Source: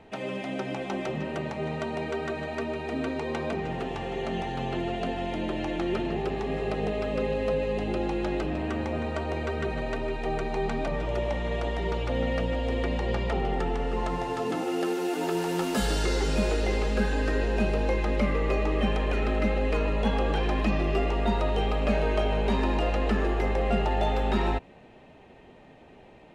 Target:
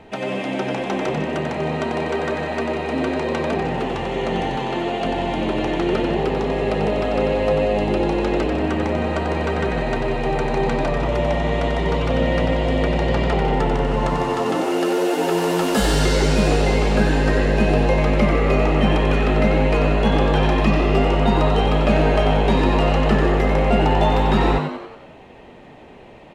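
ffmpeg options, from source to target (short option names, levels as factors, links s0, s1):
-filter_complex "[0:a]asettb=1/sr,asplit=3[s0][s1][s2];[s0]atrim=end=4.564[s3];[s1]atrim=start=4.56:end=5.05,asetpts=PTS-STARTPTS,afade=t=in:d=0.004:c=qsin,afade=t=out:st=0.486:d=0.004:c=qsin,equalizer=f=66:t=o:w=2:g=-12.5[s4];[s2]atrim=start=5.046[s5];[s3][s4]acrossfade=d=0.004:c1=hsin:c2=qsin[s6];[s6][s5]acrossfade=d=0.004:c1=qsin:c2=hsin,asplit=2[s7][s8];[s8]asplit=6[s9][s10][s11][s12][s13][s14];[s9]adelay=92,afreqshift=100,volume=0.473[s15];[s10]adelay=184,afreqshift=200,volume=0.237[s16];[s11]adelay=276,afreqshift=300,volume=0.119[s17];[s12]adelay=368,afreqshift=400,volume=0.0589[s18];[s13]adelay=460,afreqshift=500,volume=0.0295[s19];[s14]adelay=552,afreqshift=600,volume=0.0148[s20];[s15][s16][s17][s18][s19][s20]amix=inputs=6:normalize=0[s21];[s7][s21]amix=inputs=2:normalize=0,volume=2.37"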